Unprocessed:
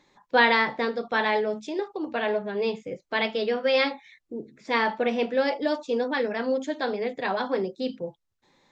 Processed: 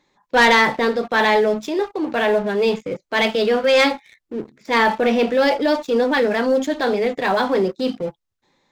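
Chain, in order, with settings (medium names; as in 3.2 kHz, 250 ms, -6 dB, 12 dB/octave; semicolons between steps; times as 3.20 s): waveshaping leveller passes 2; transient shaper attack -4 dB, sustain +2 dB; trim +2 dB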